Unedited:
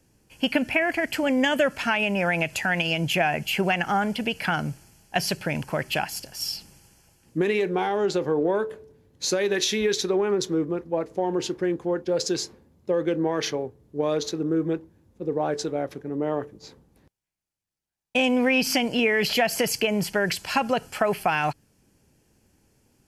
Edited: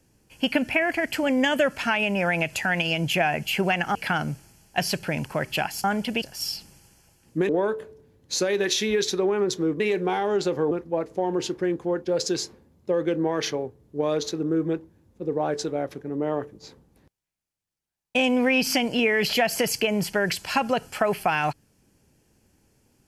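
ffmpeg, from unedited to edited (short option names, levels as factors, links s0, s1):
-filter_complex "[0:a]asplit=7[s0][s1][s2][s3][s4][s5][s6];[s0]atrim=end=3.952[s7];[s1]atrim=start=4.328:end=6.222[s8];[s2]atrim=start=3.948:end=4.332[s9];[s3]atrim=start=6.218:end=7.492[s10];[s4]atrim=start=8.398:end=10.712[s11];[s5]atrim=start=7.488:end=8.402[s12];[s6]atrim=start=10.708[s13];[s7][s8]acrossfade=d=0.004:c1=hsin:c2=hsin[s14];[s14][s9]acrossfade=d=0.004:c1=hsin:c2=hsin[s15];[s15][s10]acrossfade=d=0.004:c1=hsin:c2=hsin[s16];[s16][s11]acrossfade=d=0.004:c1=hsin:c2=hsin[s17];[s17][s12]acrossfade=d=0.004:c1=hsin:c2=hsin[s18];[s18][s13]acrossfade=d=0.004:c1=hsin:c2=hsin"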